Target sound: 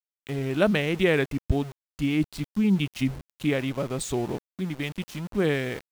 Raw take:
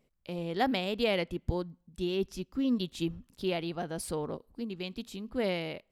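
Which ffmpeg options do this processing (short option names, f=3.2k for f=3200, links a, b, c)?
-af "asetrate=35002,aresample=44100,atempo=1.25992,aeval=exprs='val(0)*gte(abs(val(0)),0.00596)':c=same,volume=7dB"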